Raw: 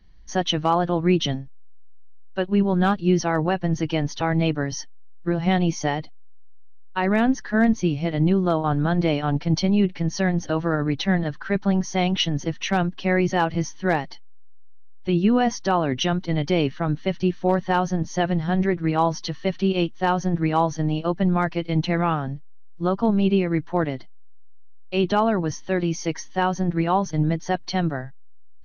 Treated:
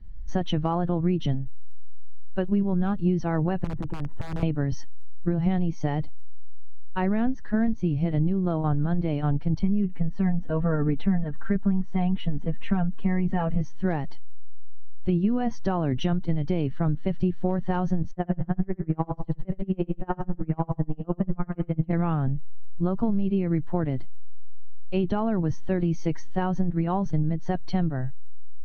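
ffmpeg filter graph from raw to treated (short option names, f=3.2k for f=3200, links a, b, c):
-filter_complex "[0:a]asettb=1/sr,asplit=3[a][b][c];[a]atrim=end=3.644[d];[b]atrim=start=3.64:end=4.43,asetpts=PTS-STARTPTS,afade=t=in:d=0.004:c=qsin,afade=t=out:st=0.786:d=0.004:c=qsin,lowpass=f=1.5k:w=0.5412,lowpass=f=1.5k:w=1.3066,aeval=exprs='(mod(5.31*val(0)+1,2)-1)/5.31':c=same,acompressor=threshold=-29dB:ratio=12:attack=3.2:release=140:knee=1:detection=peak[e];[c]atrim=start=4.426[f];[d][e]acrossfade=d=0.004:c1=hsin:c2=qsin[g];[g][f]acrossfade=d=0.004:c1=qsin:c2=hsin,asettb=1/sr,asplit=3[h][i][j];[h]atrim=end=9.594[k];[i]atrim=start=9.59:end=13.61,asetpts=PTS-STARTPTS,afade=t=in:d=0.004:c=qsin,afade=t=out:st=4.016:d=0.004:c=qsin,lowpass=2.5k,aecho=1:1:4.4:0.9,atrim=end_sample=177282[l];[j]atrim=start=13.606[m];[k][l]acrossfade=d=0.004:c1=hsin:c2=qsin[n];[n][m]acrossfade=d=0.004:c1=qsin:c2=hsin,asettb=1/sr,asplit=3[o][p][q];[o]atrim=end=18.114[r];[p]atrim=start=18.11:end=21.93,asetpts=PTS-STARTPTS,afade=t=in:d=0.004:c=qsin,afade=t=out:st=3.816:d=0.004:c=qsin,lowpass=1.9k,aecho=1:1:69|138|207|276|345|414:0.501|0.231|0.106|0.0488|0.0224|0.0103,atrim=end_sample=168462,aeval=exprs='val(0)*pow(10,-34*(0.5-0.5*cos(2*PI*10*n/s))/20)':c=same[s];[q]atrim=start=21.926[t];[r][s]acrossfade=d=0.004:c1=hsin:c2=qsin[u];[u][t]acrossfade=d=0.004:c1=qsin:c2=hsin,aemphasis=mode=reproduction:type=riaa,acompressor=threshold=-15dB:ratio=6,volume=-4.5dB"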